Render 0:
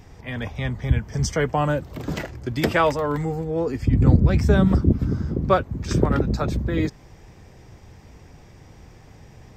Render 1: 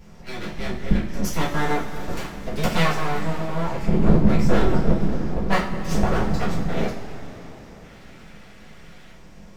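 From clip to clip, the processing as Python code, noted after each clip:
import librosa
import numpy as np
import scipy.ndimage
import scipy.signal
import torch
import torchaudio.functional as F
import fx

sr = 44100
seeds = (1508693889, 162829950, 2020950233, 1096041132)

y = fx.spec_box(x, sr, start_s=7.84, length_s=1.28, low_hz=1200.0, high_hz=3500.0, gain_db=10)
y = np.abs(y)
y = fx.rev_double_slope(y, sr, seeds[0], early_s=0.34, late_s=4.5, knee_db=-18, drr_db=-6.5)
y = y * librosa.db_to_amplitude(-6.0)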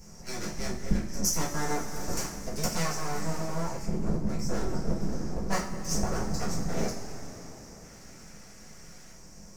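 y = fx.rider(x, sr, range_db=5, speed_s=0.5)
y = fx.high_shelf_res(y, sr, hz=4500.0, db=9.0, q=3.0)
y = y * librosa.db_to_amplitude(-9.0)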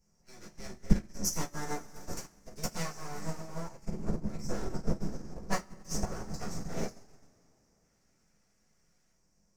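y = fx.upward_expand(x, sr, threshold_db=-37.0, expansion=2.5)
y = y * librosa.db_to_amplitude(4.0)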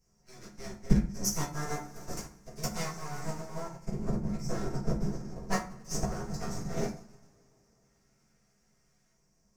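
y = fx.rev_fdn(x, sr, rt60_s=0.47, lf_ratio=1.25, hf_ratio=0.65, size_ms=44.0, drr_db=3.0)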